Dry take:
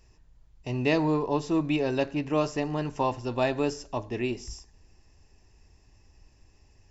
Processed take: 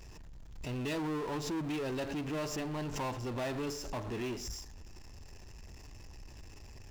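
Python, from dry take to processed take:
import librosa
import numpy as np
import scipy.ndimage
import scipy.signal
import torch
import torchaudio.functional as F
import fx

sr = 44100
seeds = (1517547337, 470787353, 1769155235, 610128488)

y = 10.0 ** (-23.5 / 20.0) * np.tanh(x / 10.0 ** (-23.5 / 20.0))
y = fx.power_curve(y, sr, exponent=0.5)
y = fx.pre_swell(y, sr, db_per_s=63.0)
y = y * 10.0 ** (-8.5 / 20.0)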